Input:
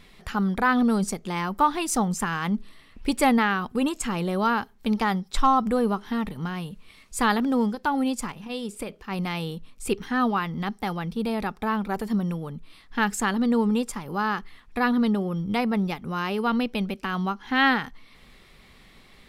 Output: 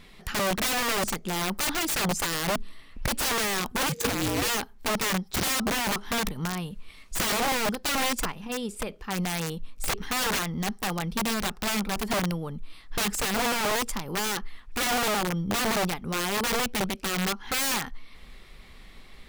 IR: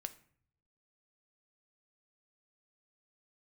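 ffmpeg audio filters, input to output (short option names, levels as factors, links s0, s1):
-filter_complex "[0:a]asubboost=boost=2:cutoff=72,aeval=exprs='(mod(13.3*val(0)+1,2)-1)/13.3':c=same,asettb=1/sr,asplit=3[s0][s1][s2];[s0]atrim=end=3.894[s3];[s1]atrim=start=3.89:end=4.48,asetpts=PTS-STARTPTS,afade=t=in:d=0.004:c=qsin,afade=t=out:st=0.586:d=0.004:c=qsin,afreqshift=-490[s4];[s2]atrim=start=4.476[s5];[s3][s4]acrossfade=d=0.004:c1=hsin:c2=qsin[s6];[s6][s5]acrossfade=d=0.004:c1=qsin:c2=hsin,volume=1.12"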